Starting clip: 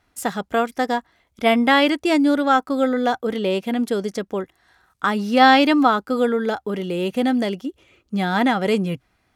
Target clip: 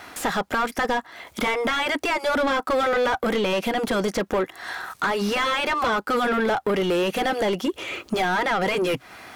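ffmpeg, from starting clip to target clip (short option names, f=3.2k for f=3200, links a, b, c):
-filter_complex "[0:a]acrossover=split=3300[a][b];[b]acompressor=threshold=-39dB:ratio=4:attack=1:release=60[c];[a][c]amix=inputs=2:normalize=0,aemphasis=mode=production:type=50kf,afftfilt=real='re*lt(hypot(re,im),0.794)':imag='im*lt(hypot(re,im),0.794)':win_size=1024:overlap=0.75,acompressor=threshold=-36dB:ratio=10,asplit=2[d][e];[e]highpass=f=720:p=1,volume=36dB,asoftclip=type=tanh:threshold=-10.5dB[f];[d][f]amix=inputs=2:normalize=0,lowpass=f=1.6k:p=1,volume=-6dB,volume=-1dB"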